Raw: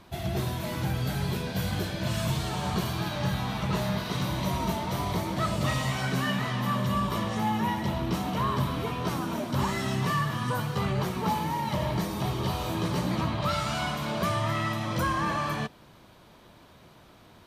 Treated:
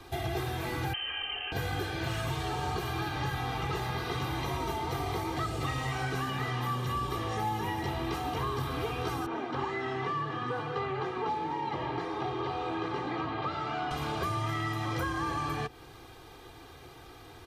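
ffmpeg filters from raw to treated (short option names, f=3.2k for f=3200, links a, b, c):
-filter_complex "[0:a]asettb=1/sr,asplit=3[a][b][c];[a]atrim=end=0.934[d];[b]atrim=start=0.93:end=1.52,asetpts=PTS-STARTPTS,afade=t=in:d=0.004:c=qsin,afade=t=out:st=0.586:d=0.004:c=qsin,lowpass=f=2.7k:t=q:w=0.5098,lowpass=f=2.7k:t=q:w=0.6013,lowpass=f=2.7k:t=q:w=0.9,lowpass=f=2.7k:t=q:w=2.563,afreqshift=-3200[e];[c]atrim=start=1.516[f];[d][e]acrossfade=d=0.004:c1=hsin:c2=qsin[g];[g][f]acrossfade=d=0.004:c1=qsin:c2=hsin,asettb=1/sr,asplit=3[h][i][j];[h]atrim=end=9.264[k];[i]atrim=start=9.26:end=13.91,asetpts=PTS-STARTPTS,afade=t=in:d=0.004:c=qsin,afade=t=out:st=4.646:d=0.004:c=qsin,highpass=230,lowpass=2.1k[l];[j]atrim=start=13.906[m];[k][l]acrossfade=d=0.004:c1=hsin:c2=qsin[n];[n][m]acrossfade=d=0.004:c1=qsin:c2=hsin,aecho=1:1:2.5:0.89,acrossover=split=120|630|2900[o][p][q][r];[o]acompressor=threshold=-43dB:ratio=4[s];[p]acompressor=threshold=-38dB:ratio=4[t];[q]acompressor=threshold=-38dB:ratio=4[u];[r]acompressor=threshold=-51dB:ratio=4[v];[s][t][u][v]amix=inputs=4:normalize=0,volume=2dB"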